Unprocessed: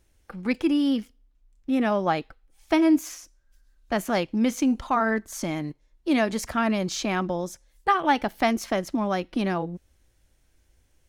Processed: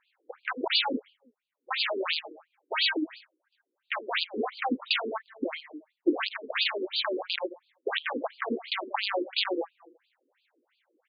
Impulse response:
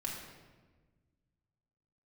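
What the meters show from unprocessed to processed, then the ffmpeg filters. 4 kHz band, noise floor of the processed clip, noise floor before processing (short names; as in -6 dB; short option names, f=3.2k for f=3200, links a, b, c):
+8.0 dB, -83 dBFS, -65 dBFS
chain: -filter_complex "[0:a]asplit=2[a][b];[b]adelay=80,lowpass=f=2.4k:p=1,volume=-17.5dB,asplit=2[c][d];[d]adelay=80,lowpass=f=2.4k:p=1,volume=0.51,asplit=2[e][f];[f]adelay=80,lowpass=f=2.4k:p=1,volume=0.51,asplit=2[g][h];[h]adelay=80,lowpass=f=2.4k:p=1,volume=0.51[i];[a][c][e][g][i]amix=inputs=5:normalize=0,aresample=11025,aeval=exprs='(mod(8.91*val(0)+1,2)-1)/8.91':c=same,aresample=44100,acrossover=split=500|3000[j][k][l];[k]acompressor=threshold=-34dB:ratio=6[m];[j][m][l]amix=inputs=3:normalize=0,afftfilt=real='re*between(b*sr/1024,340*pow(3500/340,0.5+0.5*sin(2*PI*2.9*pts/sr))/1.41,340*pow(3500/340,0.5+0.5*sin(2*PI*2.9*pts/sr))*1.41)':imag='im*between(b*sr/1024,340*pow(3500/340,0.5+0.5*sin(2*PI*2.9*pts/sr))/1.41,340*pow(3500/340,0.5+0.5*sin(2*PI*2.9*pts/sr))*1.41)':win_size=1024:overlap=0.75,volume=7.5dB"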